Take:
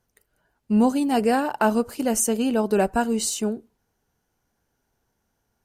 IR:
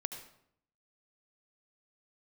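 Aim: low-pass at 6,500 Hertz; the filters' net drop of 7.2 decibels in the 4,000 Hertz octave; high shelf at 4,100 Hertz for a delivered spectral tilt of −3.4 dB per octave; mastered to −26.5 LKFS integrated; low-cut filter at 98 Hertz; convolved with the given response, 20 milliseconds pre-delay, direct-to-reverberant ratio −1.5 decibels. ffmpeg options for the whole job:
-filter_complex "[0:a]highpass=98,lowpass=6500,equalizer=frequency=4000:width_type=o:gain=-6.5,highshelf=frequency=4100:gain=-5,asplit=2[link_01][link_02];[1:a]atrim=start_sample=2205,adelay=20[link_03];[link_02][link_03]afir=irnorm=-1:irlink=0,volume=1.5dB[link_04];[link_01][link_04]amix=inputs=2:normalize=0,volume=-7dB"

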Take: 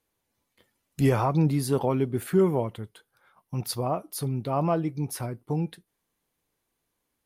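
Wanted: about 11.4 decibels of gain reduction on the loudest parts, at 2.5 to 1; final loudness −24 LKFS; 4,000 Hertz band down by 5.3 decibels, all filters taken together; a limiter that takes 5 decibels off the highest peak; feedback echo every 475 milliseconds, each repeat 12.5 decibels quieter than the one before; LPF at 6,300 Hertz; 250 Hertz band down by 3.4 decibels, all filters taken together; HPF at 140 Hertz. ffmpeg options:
ffmpeg -i in.wav -af "highpass=140,lowpass=6300,equalizer=frequency=250:width_type=o:gain=-4,equalizer=frequency=4000:width_type=o:gain=-5.5,acompressor=threshold=-37dB:ratio=2.5,alimiter=level_in=5dB:limit=-24dB:level=0:latency=1,volume=-5dB,aecho=1:1:475|950|1425:0.237|0.0569|0.0137,volume=16.5dB" out.wav

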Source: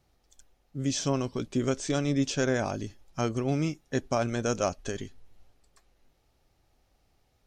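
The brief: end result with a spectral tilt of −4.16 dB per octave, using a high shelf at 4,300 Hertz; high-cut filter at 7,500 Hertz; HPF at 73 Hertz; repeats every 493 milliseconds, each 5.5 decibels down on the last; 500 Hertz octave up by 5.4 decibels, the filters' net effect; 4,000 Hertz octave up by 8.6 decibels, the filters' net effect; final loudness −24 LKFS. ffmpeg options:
ffmpeg -i in.wav -af "highpass=73,lowpass=7500,equalizer=frequency=500:width_type=o:gain=6.5,equalizer=frequency=4000:width_type=o:gain=8,highshelf=frequency=4300:gain=6.5,aecho=1:1:493|986|1479|1972|2465|2958|3451:0.531|0.281|0.149|0.079|0.0419|0.0222|0.0118,volume=1.5dB" out.wav

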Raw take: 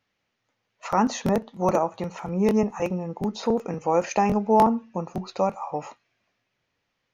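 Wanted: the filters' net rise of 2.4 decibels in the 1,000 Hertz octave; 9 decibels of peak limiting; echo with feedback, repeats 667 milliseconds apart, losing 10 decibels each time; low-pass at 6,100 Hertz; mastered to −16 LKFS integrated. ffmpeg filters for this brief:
ffmpeg -i in.wav -af "lowpass=6100,equalizer=frequency=1000:width_type=o:gain=3,alimiter=limit=-16dB:level=0:latency=1,aecho=1:1:667|1334|2001|2668:0.316|0.101|0.0324|0.0104,volume=12dB" out.wav

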